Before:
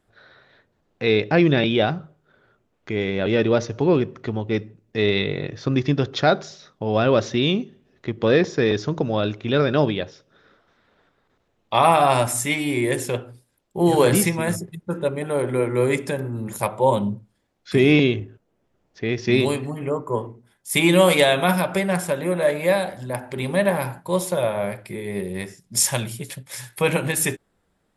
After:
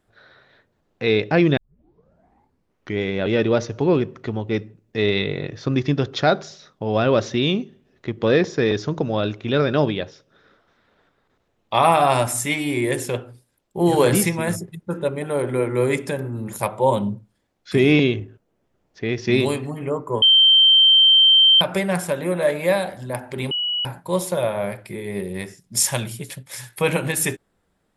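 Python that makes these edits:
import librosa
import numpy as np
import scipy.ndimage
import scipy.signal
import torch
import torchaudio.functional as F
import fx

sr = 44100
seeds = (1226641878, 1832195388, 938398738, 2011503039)

y = fx.edit(x, sr, fx.tape_start(start_s=1.57, length_s=1.42),
    fx.bleep(start_s=20.22, length_s=1.39, hz=3130.0, db=-9.5),
    fx.bleep(start_s=23.51, length_s=0.34, hz=2930.0, db=-20.5), tone=tone)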